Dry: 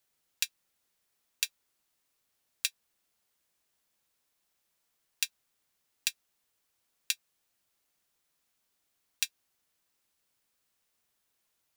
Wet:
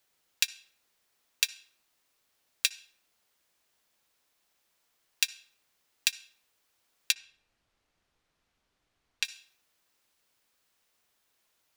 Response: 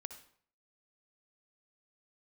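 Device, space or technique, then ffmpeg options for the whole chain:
filtered reverb send: -filter_complex "[0:a]asplit=2[a][b];[b]highpass=230,lowpass=7.2k[c];[1:a]atrim=start_sample=2205[d];[c][d]afir=irnorm=-1:irlink=0,volume=-2.5dB[e];[a][e]amix=inputs=2:normalize=0,asettb=1/sr,asplit=3[f][g][h];[f]atrim=end=7.124[i];[g]atrim=start=7.12:end=9.25,asetpts=PTS-STARTPTS,afade=t=in:d=0.004:c=qsin,afade=t=out:st=2.126:d=0.004:c=qsin,aemphasis=mode=reproduction:type=bsi[j];[h]atrim=start=9.246[k];[i][j]acrossfade=d=0.004:c1=hsin:c2=qsin[l];[l][k]acrossfade=d=0.004:c1=qsin:c2=hsin,volume=2.5dB"

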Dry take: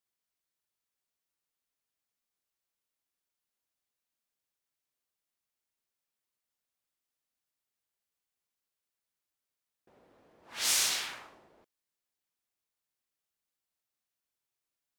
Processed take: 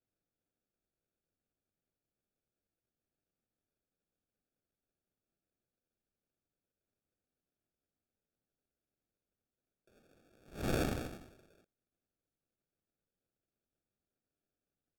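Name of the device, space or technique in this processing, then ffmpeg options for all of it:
crushed at another speed: -af "asetrate=55125,aresample=44100,acrusher=samples=35:mix=1:aa=0.000001,asetrate=35280,aresample=44100,volume=-4dB"

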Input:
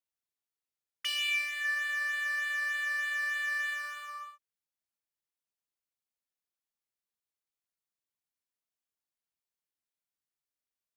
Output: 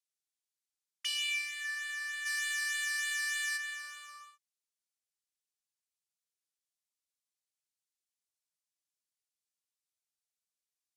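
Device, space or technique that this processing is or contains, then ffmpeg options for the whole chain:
piezo pickup straight into a mixer: -filter_complex "[0:a]lowpass=8.1k,aderivative,asplit=3[a][b][c];[a]afade=t=out:st=2.25:d=0.02[d];[b]highshelf=f=2.4k:g=10,afade=t=in:st=2.25:d=0.02,afade=t=out:st=3.56:d=0.02[e];[c]afade=t=in:st=3.56:d=0.02[f];[d][e][f]amix=inputs=3:normalize=0,volume=5.5dB"

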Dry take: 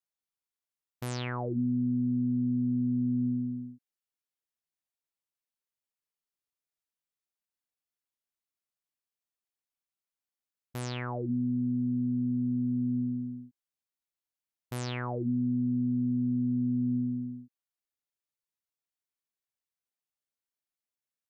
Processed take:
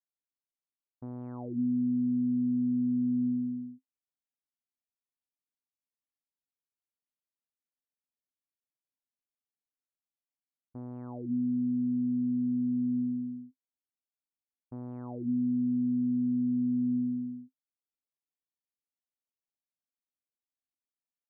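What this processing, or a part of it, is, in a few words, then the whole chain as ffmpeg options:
under water: -af "lowpass=f=980:w=0.5412,lowpass=f=980:w=1.3066,equalizer=f=260:t=o:w=0.3:g=12,volume=-8.5dB"

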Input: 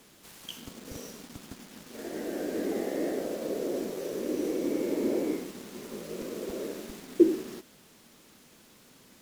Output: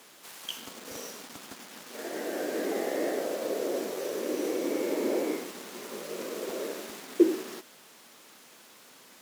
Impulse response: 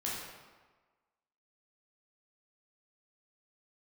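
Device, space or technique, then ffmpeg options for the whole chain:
filter by subtraction: -filter_complex "[0:a]asplit=2[a][b];[b]lowpass=890,volume=-1[c];[a][c]amix=inputs=2:normalize=0,volume=4dB"

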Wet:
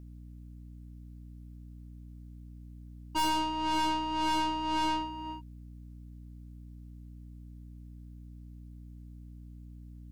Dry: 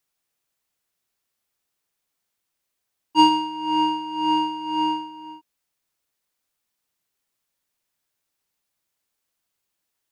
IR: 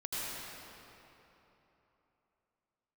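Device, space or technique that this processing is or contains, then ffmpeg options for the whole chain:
valve amplifier with mains hum: -af "aeval=exprs='(tanh(22.4*val(0)+0.4)-tanh(0.4))/22.4':c=same,aeval=exprs='val(0)+0.00501*(sin(2*PI*60*n/s)+sin(2*PI*2*60*n/s)/2+sin(2*PI*3*60*n/s)/3+sin(2*PI*4*60*n/s)/4+sin(2*PI*5*60*n/s)/5)':c=same"

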